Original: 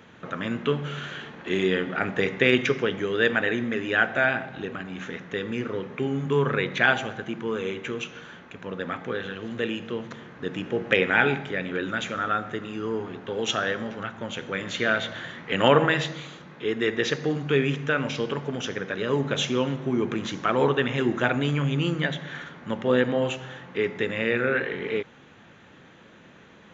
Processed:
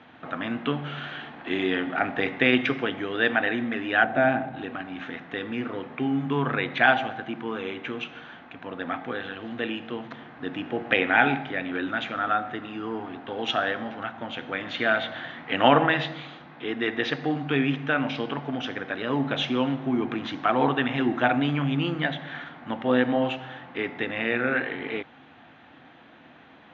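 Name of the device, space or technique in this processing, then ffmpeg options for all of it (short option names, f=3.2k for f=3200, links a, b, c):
guitar cabinet: -filter_complex "[0:a]highpass=76,equalizer=f=110:t=q:w=4:g=-6,equalizer=f=190:t=q:w=4:g=-9,equalizer=f=270:t=q:w=4:g=6,equalizer=f=420:t=q:w=4:g=-8,equalizer=f=740:t=q:w=4:g=9,lowpass=f=4.1k:w=0.5412,lowpass=f=4.1k:w=1.3066,bandreject=f=550:w=16,asettb=1/sr,asplit=3[a][b][c];[a]atrim=end=4.044[d];[b]atrim=start=4.04:end=4.57,asetpts=PTS-STARTPTS,afade=t=in:d=0.004:c=qsin,afade=t=out:st=0.526:d=0.004:c=qsin,tiltshelf=f=730:g=6.5[e];[c]atrim=start=4.566[f];[d][e]acrossfade=d=0.004:c1=hsin:c2=qsin[g];[g][f]acrossfade=d=0.004:c1=qsin:c2=hsin"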